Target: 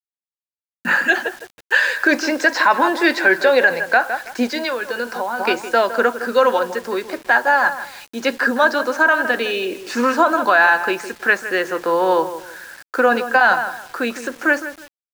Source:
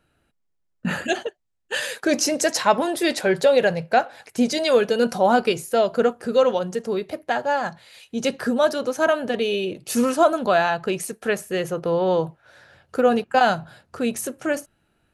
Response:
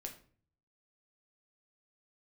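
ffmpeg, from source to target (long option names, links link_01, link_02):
-filter_complex "[0:a]highpass=frequency=300:width=0.5412,highpass=frequency=300:width=1.3066,equalizer=frequency=430:width_type=q:width=4:gain=-9,equalizer=frequency=630:width_type=q:width=4:gain=-7,equalizer=frequency=1000:width_type=q:width=4:gain=7,equalizer=frequency=1600:width_type=q:width=4:gain=10,equalizer=frequency=3200:width_type=q:width=4:gain=-7,equalizer=frequency=6200:width_type=q:width=4:gain=-4,lowpass=frequency=7100:width=0.5412,lowpass=frequency=7100:width=1.3066,acrossover=split=450|3200[link_01][link_02][link_03];[link_03]asoftclip=type=tanh:threshold=-30dB[link_04];[link_01][link_02][link_04]amix=inputs=3:normalize=0,acrossover=split=5500[link_05][link_06];[link_06]acompressor=threshold=-50dB:ratio=4:attack=1:release=60[link_07];[link_05][link_07]amix=inputs=2:normalize=0,asplit=2[link_08][link_09];[link_09]adelay=161,lowpass=frequency=2200:poles=1,volume=-12dB,asplit=2[link_10][link_11];[link_11]adelay=161,lowpass=frequency=2200:poles=1,volume=0.26,asplit=2[link_12][link_13];[link_13]adelay=161,lowpass=frequency=2200:poles=1,volume=0.26[link_14];[link_10][link_12][link_14]amix=inputs=3:normalize=0[link_15];[link_08][link_15]amix=inputs=2:normalize=0,asplit=3[link_16][link_17][link_18];[link_16]afade=type=out:start_time=4.47:duration=0.02[link_19];[link_17]acompressor=threshold=-27dB:ratio=16,afade=type=in:start_time=4.47:duration=0.02,afade=type=out:start_time=5.39:duration=0.02[link_20];[link_18]afade=type=in:start_time=5.39:duration=0.02[link_21];[link_19][link_20][link_21]amix=inputs=3:normalize=0,acrusher=bits=7:mix=0:aa=0.000001,equalizer=frequency=1100:width=1.4:gain=-2.5,alimiter=level_in=11dB:limit=-1dB:release=50:level=0:latency=1,volume=-3dB"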